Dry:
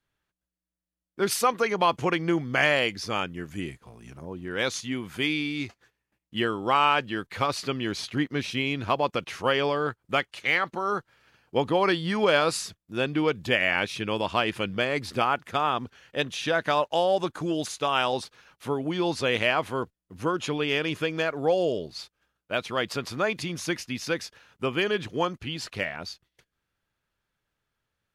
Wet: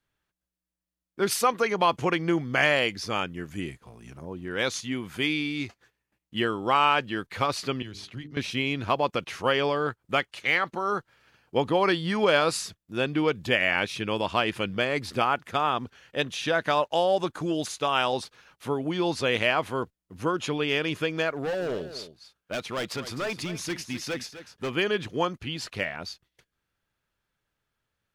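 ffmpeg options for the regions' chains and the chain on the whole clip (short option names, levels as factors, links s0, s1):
-filter_complex "[0:a]asettb=1/sr,asplit=3[s0][s1][s2];[s0]atrim=end=7.824[s3];[s1]atrim=start=7.82:end=8.37,asetpts=PTS-STARTPTS,afade=t=in:d=0.004:c=qsin,afade=t=out:st=0.546:d=0.004:c=qsin,highshelf=f=3000:g=-10,bandreject=f=50:t=h:w=6,bandreject=f=100:t=h:w=6,bandreject=f=150:t=h:w=6,bandreject=f=200:t=h:w=6,bandreject=f=250:t=h:w=6,bandreject=f=300:t=h:w=6,bandreject=f=350:t=h:w=6,bandreject=f=400:t=h:w=6,bandreject=f=450:t=h:w=6,acrossover=split=140|3000[s4][s5][s6];[s5]acompressor=threshold=0.00316:ratio=2.5:attack=3.2:release=140:knee=2.83:detection=peak[s7];[s4][s7][s6]amix=inputs=3:normalize=0[s8];[s2]atrim=start=8.366[s9];[s3][s8]acrossfade=d=0.004:c1=hsin:c2=qsin[s10];[s10][s9]acrossfade=d=0.004:c1=qsin:c2=hsin,asettb=1/sr,asplit=3[s11][s12][s13];[s11]atrim=end=21.344[s14];[s12]atrim=start=21.34:end=24.72,asetpts=PTS-STARTPTS,afade=t=in:d=0.004:c=qsin,afade=t=out:st=3.376:d=0.004:c=qsin,asoftclip=type=hard:threshold=0.0473,aecho=1:1:255:0.237,atrim=end_sample=149058[s15];[s13]atrim=start=24.716[s16];[s14][s15]acrossfade=d=0.004:c1=hsin:c2=qsin[s17];[s17][s16]acrossfade=d=0.004:c1=qsin:c2=hsin"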